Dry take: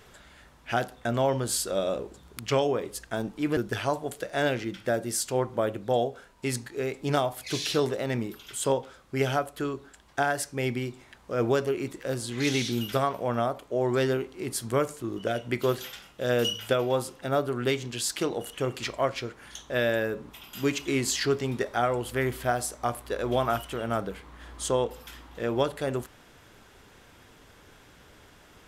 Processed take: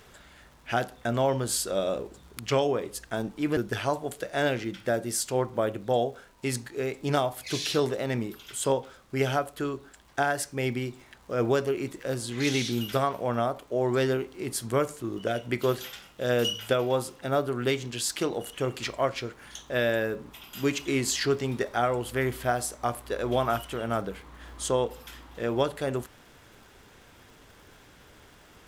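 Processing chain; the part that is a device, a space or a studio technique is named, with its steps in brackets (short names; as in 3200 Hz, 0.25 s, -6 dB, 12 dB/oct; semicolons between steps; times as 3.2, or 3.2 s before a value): vinyl LP (crackle 140/s -48 dBFS; pink noise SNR 42 dB)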